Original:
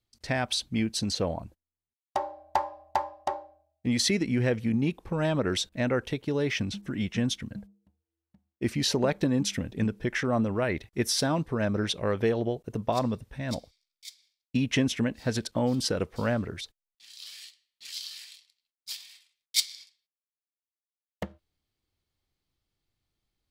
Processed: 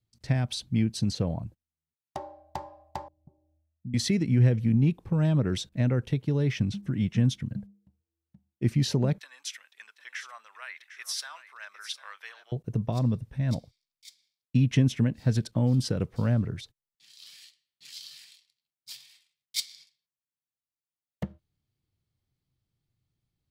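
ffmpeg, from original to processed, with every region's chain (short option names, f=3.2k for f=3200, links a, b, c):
-filter_complex "[0:a]asettb=1/sr,asplit=3[a][b][c];[a]atrim=end=3.084[d];[b]atrim=start=3.08:end=3.94,asetpts=PTS-STARTPTS,afade=t=in:d=0.004:c=qsin,afade=t=out:st=0.856:d=0.004:c=qsin,acompressor=threshold=-54dB:ratio=2:attack=3.2:release=140:knee=1:detection=peak,lowpass=f=200:t=q:w=1.7[e];[c]atrim=start=3.936[f];[d][e]acrossfade=d=0.004:c1=hsin:c2=qsin[g];[g][f]acrossfade=d=0.004:c1=qsin:c2=hsin,asettb=1/sr,asplit=3[h][i][j];[h]atrim=end=9.184[k];[i]atrim=start=9.18:end=12.52,asetpts=PTS-STARTPTS,afade=t=in:d=0.004:c=qsin,afade=t=out:st=3.336:d=0.004:c=qsin,highpass=f=1.2k:w=0.5412,highpass=f=1.2k:w=1.3066,aecho=1:1:752:0.211,atrim=end_sample=147294[l];[j]atrim=start=12.516[m];[k][l]acrossfade=d=0.004:c1=hsin:c2=qsin[n];[n][m]acrossfade=d=0.004:c1=qsin:c2=hsin,equalizer=f=130:t=o:w=1.5:g=15,acrossover=split=490|3000[o][p][q];[p]acompressor=threshold=-30dB:ratio=6[r];[o][r][q]amix=inputs=3:normalize=0,volume=-5.5dB"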